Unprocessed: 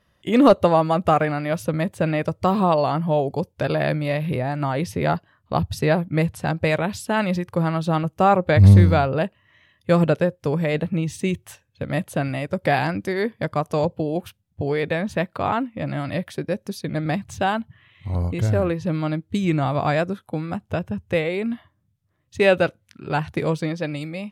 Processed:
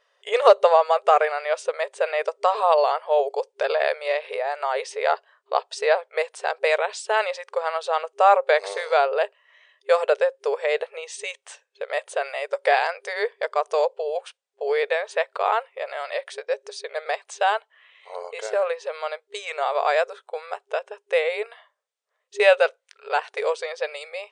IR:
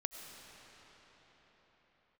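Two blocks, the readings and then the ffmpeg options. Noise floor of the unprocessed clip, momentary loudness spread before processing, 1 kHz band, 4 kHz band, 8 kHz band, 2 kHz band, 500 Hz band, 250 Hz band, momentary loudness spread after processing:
−68 dBFS, 10 LU, +1.5 dB, +1.5 dB, +0.5 dB, +1.5 dB, +1.0 dB, below −30 dB, 14 LU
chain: -af "afftfilt=real='re*between(b*sr/4096,400,9500)':imag='im*between(b*sr/4096,400,9500)':win_size=4096:overlap=0.75,volume=1.5dB"

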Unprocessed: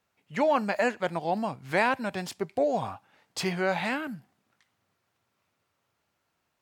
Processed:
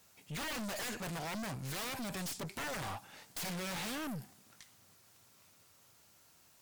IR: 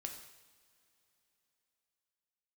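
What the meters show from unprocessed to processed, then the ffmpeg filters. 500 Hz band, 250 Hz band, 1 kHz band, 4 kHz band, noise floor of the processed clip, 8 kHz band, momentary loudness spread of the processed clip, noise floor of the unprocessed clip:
−17.5 dB, −10.0 dB, −14.5 dB, −2.5 dB, −65 dBFS, +2.0 dB, 13 LU, −78 dBFS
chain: -filter_complex "[0:a]bass=frequency=250:gain=3,treble=frequency=4000:gain=14,asplit=2[link_01][link_02];[link_02]acrusher=bits=3:mix=0:aa=0.5,volume=-3.5dB[link_03];[link_01][link_03]amix=inputs=2:normalize=0,aeval=exprs='(mod(7.08*val(0)+1,2)-1)/7.08':channel_layout=same,aeval=exprs='(tanh(200*val(0)+0.25)-tanh(0.25))/200':channel_layout=same,volume=7dB"

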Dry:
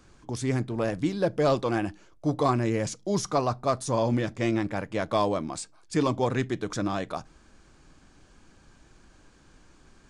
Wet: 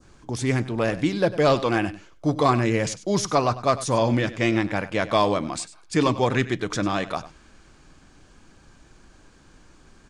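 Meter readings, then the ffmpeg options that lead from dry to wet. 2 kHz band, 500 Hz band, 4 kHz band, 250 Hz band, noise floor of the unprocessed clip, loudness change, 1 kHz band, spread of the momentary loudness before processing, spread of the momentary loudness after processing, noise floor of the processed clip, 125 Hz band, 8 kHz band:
+8.0 dB, +4.0 dB, +7.5 dB, +3.5 dB, −57 dBFS, +4.5 dB, +5.0 dB, 7 LU, 8 LU, −54 dBFS, +4.0 dB, +5.0 dB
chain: -filter_complex "[0:a]adynamicequalizer=threshold=0.00562:dfrequency=2500:dqfactor=0.78:tfrequency=2500:tqfactor=0.78:attack=5:release=100:ratio=0.375:range=3:mode=boostabove:tftype=bell,asplit=2[link_01][link_02];[link_02]aecho=0:1:98:0.158[link_03];[link_01][link_03]amix=inputs=2:normalize=0,volume=3.5dB"

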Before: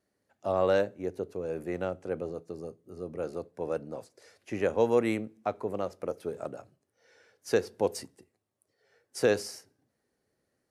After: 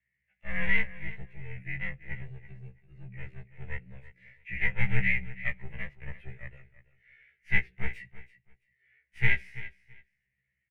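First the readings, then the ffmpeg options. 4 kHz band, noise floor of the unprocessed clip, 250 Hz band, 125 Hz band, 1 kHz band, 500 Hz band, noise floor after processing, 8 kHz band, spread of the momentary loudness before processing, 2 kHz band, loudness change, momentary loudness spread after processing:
−3.0 dB, −80 dBFS, −8.5 dB, +6.5 dB, −13.5 dB, −22.0 dB, −81 dBFS, below −25 dB, 17 LU, +11.0 dB, −0.5 dB, 20 LU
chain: -af "highpass=110,afreqshift=-39,aeval=exprs='0.237*(cos(1*acos(clip(val(0)/0.237,-1,1)))-cos(1*PI/2))+0.106*(cos(4*acos(clip(val(0)/0.237,-1,1)))-cos(4*PI/2))':channel_layout=same,firequalizer=gain_entry='entry(160,0);entry(250,-26);entry(620,-21);entry(1200,-23);entry(2000,13);entry(4700,-29)':delay=0.05:min_phase=1,aecho=1:1:332|664:0.158|0.0285,afftfilt=real='re*1.73*eq(mod(b,3),0)':imag='im*1.73*eq(mod(b,3),0)':win_size=2048:overlap=0.75,volume=3dB"

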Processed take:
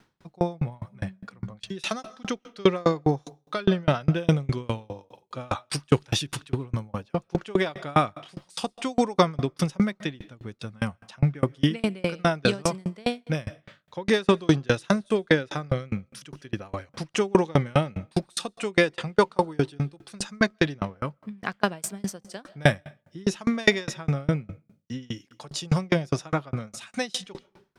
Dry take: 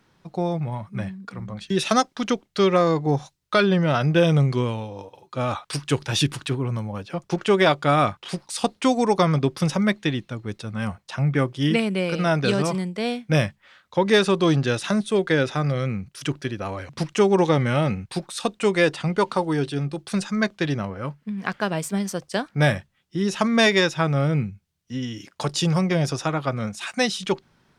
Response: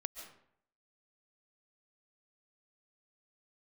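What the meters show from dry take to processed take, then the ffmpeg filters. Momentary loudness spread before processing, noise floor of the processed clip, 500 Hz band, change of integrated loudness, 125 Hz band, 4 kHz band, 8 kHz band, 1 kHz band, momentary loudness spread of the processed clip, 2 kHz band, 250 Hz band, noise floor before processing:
12 LU, −69 dBFS, −4.0 dB, −4.0 dB, −4.0 dB, −4.5 dB, −3.5 dB, −4.5 dB, 14 LU, −3.5 dB, −4.0 dB, −66 dBFS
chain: -filter_complex "[0:a]asplit=2[link_01][link_02];[1:a]atrim=start_sample=2205[link_03];[link_02][link_03]afir=irnorm=-1:irlink=0,volume=-13dB[link_04];[link_01][link_04]amix=inputs=2:normalize=0,aeval=exprs='val(0)*pow(10,-33*if(lt(mod(4.9*n/s,1),2*abs(4.9)/1000),1-mod(4.9*n/s,1)/(2*abs(4.9)/1000),(mod(4.9*n/s,1)-2*abs(4.9)/1000)/(1-2*abs(4.9)/1000))/20)':channel_layout=same,volume=3.5dB"

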